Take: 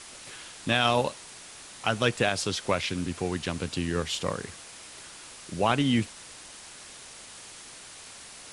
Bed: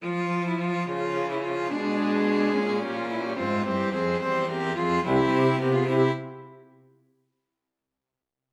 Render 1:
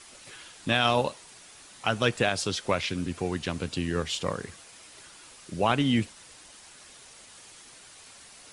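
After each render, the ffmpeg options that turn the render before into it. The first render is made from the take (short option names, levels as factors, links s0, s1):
-af "afftdn=nr=6:nf=-46"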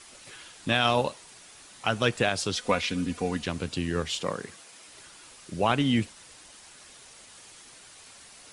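-filter_complex "[0:a]asettb=1/sr,asplit=3[s0][s1][s2];[s0]atrim=end=2.554[s3];[s1]atrim=start=2.55:end=3.44,asetpts=PTS-STARTPTS,afade=t=in:d=0.004:c=qsin,afade=t=out:st=0.886:d=0.004:c=qsin,aecho=1:1:4.1:0.65,atrim=end_sample=39249[s4];[s2]atrim=start=3.436[s5];[s3][s4]acrossfade=d=0.004:c1=hsin:c2=qsin[s6];[s6][s5]acrossfade=d=0.004:c1=qsin:c2=hsin,asettb=1/sr,asplit=3[s7][s8][s9];[s7]atrim=end=4.224[s10];[s8]atrim=start=4.22:end=4.88,asetpts=PTS-STARTPTS,afade=t=in:d=0.004:c=qsin,afade=t=out:st=0.656:d=0.004:c=qsin,highpass=150[s11];[s9]atrim=start=4.876[s12];[s10][s11]acrossfade=d=0.004:c1=hsin:c2=qsin[s13];[s13][s12]acrossfade=d=0.004:c1=qsin:c2=hsin"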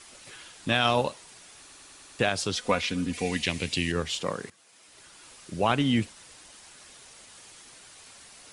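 -filter_complex "[0:a]asettb=1/sr,asplit=3[s0][s1][s2];[s0]atrim=end=3.134[s3];[s1]atrim=start=3.13:end=3.92,asetpts=PTS-STARTPTS,afade=t=in:d=0.004:c=qsin,afade=t=out:st=0.786:d=0.004:c=qsin,highshelf=f=1700:t=q:w=3:g=6[s4];[s2]atrim=start=3.916[s5];[s3][s4]acrossfade=d=0.004:c1=hsin:c2=qsin[s6];[s6][s5]acrossfade=d=0.004:c1=qsin:c2=hsin,asplit=8[s7][s8][s9][s10][s11][s12][s13][s14];[s7]atrim=end=1.692[s15];[s8]atrim=start=1.588:end=1.692[s16];[s9]atrim=start=1.588:end=1.692[s17];[s10]atrim=start=1.588:end=1.692[s18];[s11]atrim=start=1.588:end=1.692[s19];[s12]atrim=start=1.588:end=1.692[s20];[s13]atrim=start=2.188:end=4.5,asetpts=PTS-STARTPTS,afade=t=out:st=2.308:d=0.004:c=hsin:silence=0.199526[s21];[s14]atrim=start=4.5,asetpts=PTS-STARTPTS,afade=t=in:d=0.82:silence=0.199526[s22];[s15][s16]acrossfade=d=0.004:c1=hsin:c2=hsin[s23];[s23][s17]acrossfade=d=0.004:c1=hsin:c2=hsin[s24];[s24][s18]acrossfade=d=0.004:c1=hsin:c2=hsin[s25];[s25][s19]acrossfade=d=0.004:c1=hsin:c2=hsin[s26];[s26][s20]acrossfade=d=0.004:c1=hsin:c2=hsin[s27];[s21][s22]concat=n=2:v=0:a=1[s28];[s27][s28]acrossfade=d=0.004:c1=hsin:c2=hsin"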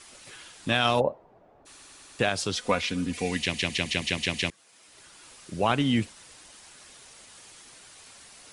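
-filter_complex "[0:a]asplit=3[s0][s1][s2];[s0]afade=t=out:st=0.99:d=0.02[s3];[s1]lowpass=f=660:t=q:w=2.1,afade=t=in:st=0.99:d=0.02,afade=t=out:st=1.65:d=0.02[s4];[s2]afade=t=in:st=1.65:d=0.02[s5];[s3][s4][s5]amix=inputs=3:normalize=0,asplit=8[s6][s7][s8][s9][s10][s11][s12][s13];[s6]atrim=end=3.542[s14];[s7]atrim=start=3.378:end=3.542[s15];[s8]atrim=start=3.378:end=3.542[s16];[s9]atrim=start=3.378:end=3.542[s17];[s10]atrim=start=3.378:end=3.542[s18];[s11]atrim=start=3.378:end=3.542[s19];[s12]atrim=start=3.378:end=3.542[s20];[s13]atrim=start=4.498[s21];[s14][s15]acrossfade=d=0.004:c1=hsin:c2=hsin[s22];[s22][s16]acrossfade=d=0.004:c1=hsin:c2=hsin[s23];[s23][s17]acrossfade=d=0.004:c1=hsin:c2=hsin[s24];[s24][s18]acrossfade=d=0.004:c1=hsin:c2=hsin[s25];[s25][s19]acrossfade=d=0.004:c1=hsin:c2=hsin[s26];[s26][s20]acrossfade=d=0.004:c1=hsin:c2=hsin[s27];[s27][s21]acrossfade=d=0.004:c1=hsin:c2=hsin"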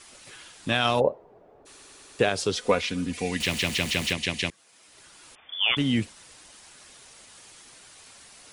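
-filter_complex "[0:a]asettb=1/sr,asplit=3[s0][s1][s2];[s0]atrim=end=1.014[s3];[s1]atrim=start=1.01:end=2.82,asetpts=PTS-STARTPTS,afade=t=in:d=0.004:c=qsin,afade=t=out:st=1.806:d=0.004:c=qsin,equalizer=f=430:w=2.4:g=8[s4];[s2]atrim=start=2.816[s5];[s3][s4]acrossfade=d=0.004:c1=hsin:c2=qsin[s6];[s6][s5]acrossfade=d=0.004:c1=qsin:c2=hsin,asettb=1/sr,asplit=3[s7][s8][s9];[s7]atrim=end=3.404[s10];[s8]atrim=start=3.4:end=4.13,asetpts=PTS-STARTPTS,afade=t=in:d=0.004:c=qsin,afade=t=out:st=0.726:d=0.004:c=qsin,aeval=exprs='val(0)+0.5*0.0266*sgn(val(0))':c=same[s11];[s9]atrim=start=4.126[s12];[s10][s11]acrossfade=d=0.004:c1=hsin:c2=qsin[s13];[s13][s12]acrossfade=d=0.004:c1=qsin:c2=hsin,asettb=1/sr,asplit=3[s14][s15][s16];[s14]atrim=end=5.354[s17];[s15]atrim=start=5.35:end=5.77,asetpts=PTS-STARTPTS,afade=t=in:d=0.004:c=qsin,afade=t=out:st=0.416:d=0.004:c=qsin,lowpass=f=3100:t=q:w=0.5098,lowpass=f=3100:t=q:w=0.6013,lowpass=f=3100:t=q:w=0.9,lowpass=f=3100:t=q:w=2.563,afreqshift=-3600[s18];[s16]atrim=start=5.766[s19];[s17][s18]acrossfade=d=0.004:c1=hsin:c2=qsin[s20];[s20][s19]acrossfade=d=0.004:c1=qsin:c2=hsin"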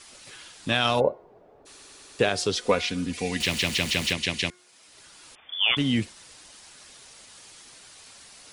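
-af "equalizer=f=4600:w=1.3:g=3,bandreject=f=359.4:t=h:w=4,bandreject=f=718.8:t=h:w=4,bandreject=f=1078.2:t=h:w=4,bandreject=f=1437.6:t=h:w=4,bandreject=f=1797:t=h:w=4,bandreject=f=2156.4:t=h:w=4"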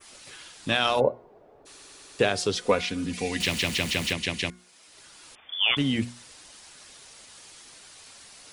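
-af "adynamicequalizer=threshold=0.0158:dfrequency=4600:dqfactor=0.73:tfrequency=4600:tqfactor=0.73:attack=5:release=100:ratio=0.375:range=2:mode=cutabove:tftype=bell,bandreject=f=60:t=h:w=6,bandreject=f=120:t=h:w=6,bandreject=f=180:t=h:w=6,bandreject=f=240:t=h:w=6"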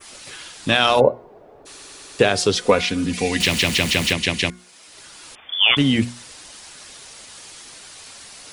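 -af "volume=2.51,alimiter=limit=0.708:level=0:latency=1"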